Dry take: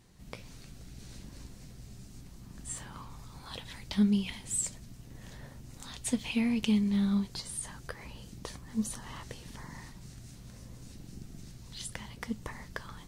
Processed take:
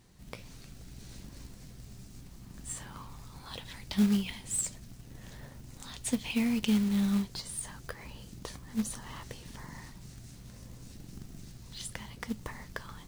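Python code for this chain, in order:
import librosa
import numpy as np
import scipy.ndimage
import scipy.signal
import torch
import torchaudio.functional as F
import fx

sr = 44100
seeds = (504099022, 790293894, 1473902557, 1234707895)

y = fx.quant_float(x, sr, bits=2)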